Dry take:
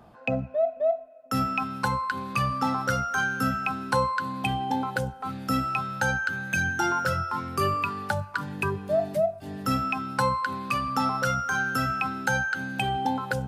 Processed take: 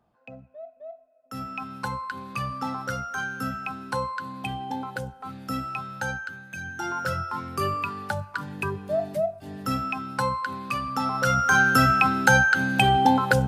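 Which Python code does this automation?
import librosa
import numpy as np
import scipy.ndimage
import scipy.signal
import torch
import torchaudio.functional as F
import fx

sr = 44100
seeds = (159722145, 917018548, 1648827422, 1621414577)

y = fx.gain(x, sr, db=fx.line((0.87, -17.0), (1.72, -4.5), (6.11, -4.5), (6.5, -12.0), (7.09, -1.5), (11.05, -1.5), (11.51, 8.0)))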